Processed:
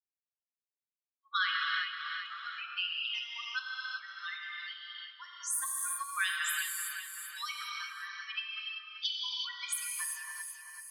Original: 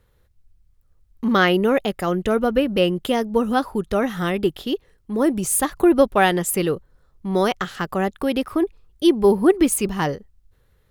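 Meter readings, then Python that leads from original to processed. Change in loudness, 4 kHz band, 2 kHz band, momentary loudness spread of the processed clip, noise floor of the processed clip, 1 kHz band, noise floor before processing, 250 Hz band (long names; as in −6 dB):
−15.0 dB, −4.0 dB, −7.0 dB, 10 LU, below −85 dBFS, −17.0 dB, −61 dBFS, below −40 dB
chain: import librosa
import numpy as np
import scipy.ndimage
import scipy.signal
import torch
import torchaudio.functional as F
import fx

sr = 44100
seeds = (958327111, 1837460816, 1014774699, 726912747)

y = fx.bin_expand(x, sr, power=3.0)
y = scipy.signal.sosfilt(scipy.signal.cheby1(6, 6, 1100.0, 'highpass', fs=sr, output='sos'), y)
y = fx.env_lowpass(y, sr, base_hz=2400.0, full_db=-29.5)
y = fx.echo_feedback(y, sr, ms=382, feedback_pct=25, wet_db=-12.5)
y = fx.rev_gated(y, sr, seeds[0], gate_ms=410, shape='flat', drr_db=-2.0)
y = fx.band_squash(y, sr, depth_pct=70)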